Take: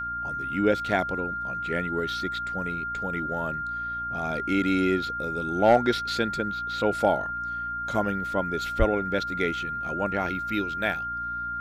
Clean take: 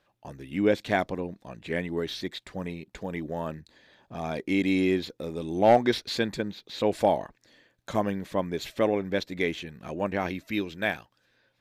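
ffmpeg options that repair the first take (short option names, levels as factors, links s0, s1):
-filter_complex "[0:a]bandreject=f=59:t=h:w=4,bandreject=f=118:t=h:w=4,bandreject=f=177:t=h:w=4,bandreject=f=236:t=h:w=4,bandreject=f=295:t=h:w=4,bandreject=f=1400:w=30,asplit=3[s0][s1][s2];[s0]afade=t=out:st=8.78:d=0.02[s3];[s1]highpass=f=140:w=0.5412,highpass=f=140:w=1.3066,afade=t=in:st=8.78:d=0.02,afade=t=out:st=8.9:d=0.02[s4];[s2]afade=t=in:st=8.9:d=0.02[s5];[s3][s4][s5]amix=inputs=3:normalize=0"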